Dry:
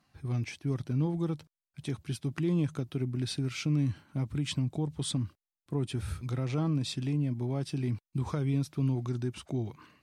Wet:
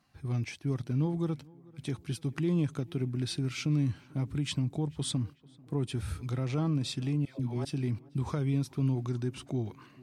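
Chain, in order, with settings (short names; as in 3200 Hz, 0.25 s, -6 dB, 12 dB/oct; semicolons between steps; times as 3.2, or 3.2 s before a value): 7.25–7.65 dispersion lows, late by 0.146 s, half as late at 800 Hz; tape echo 0.441 s, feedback 69%, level -22 dB, low-pass 2200 Hz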